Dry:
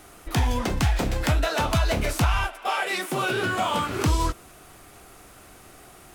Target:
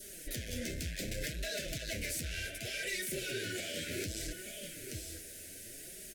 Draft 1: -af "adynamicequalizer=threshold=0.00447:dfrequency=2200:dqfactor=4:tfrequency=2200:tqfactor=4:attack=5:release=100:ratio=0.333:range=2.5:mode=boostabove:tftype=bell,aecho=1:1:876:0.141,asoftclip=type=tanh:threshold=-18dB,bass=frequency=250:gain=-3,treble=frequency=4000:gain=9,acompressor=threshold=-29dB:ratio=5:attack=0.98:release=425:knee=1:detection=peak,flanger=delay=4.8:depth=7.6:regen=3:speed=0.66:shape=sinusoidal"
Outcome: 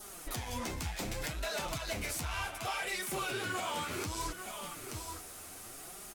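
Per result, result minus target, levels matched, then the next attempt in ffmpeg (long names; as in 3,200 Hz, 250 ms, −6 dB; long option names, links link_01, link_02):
1,000 Hz band +20.0 dB; soft clipping: distortion −6 dB
-af "adynamicequalizer=threshold=0.00447:dfrequency=2200:dqfactor=4:tfrequency=2200:tqfactor=4:attack=5:release=100:ratio=0.333:range=2.5:mode=boostabove:tftype=bell,aecho=1:1:876:0.141,asoftclip=type=tanh:threshold=-18dB,bass=frequency=250:gain=-3,treble=frequency=4000:gain=9,acompressor=threshold=-29dB:ratio=5:attack=0.98:release=425:knee=1:detection=peak,asuperstop=centerf=990:order=12:qfactor=1.1,flanger=delay=4.8:depth=7.6:regen=3:speed=0.66:shape=sinusoidal"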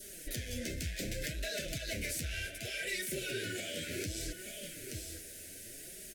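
soft clipping: distortion −6 dB
-af "adynamicequalizer=threshold=0.00447:dfrequency=2200:dqfactor=4:tfrequency=2200:tqfactor=4:attack=5:release=100:ratio=0.333:range=2.5:mode=boostabove:tftype=bell,aecho=1:1:876:0.141,asoftclip=type=tanh:threshold=-24.5dB,bass=frequency=250:gain=-3,treble=frequency=4000:gain=9,acompressor=threshold=-29dB:ratio=5:attack=0.98:release=425:knee=1:detection=peak,asuperstop=centerf=990:order=12:qfactor=1.1,flanger=delay=4.8:depth=7.6:regen=3:speed=0.66:shape=sinusoidal"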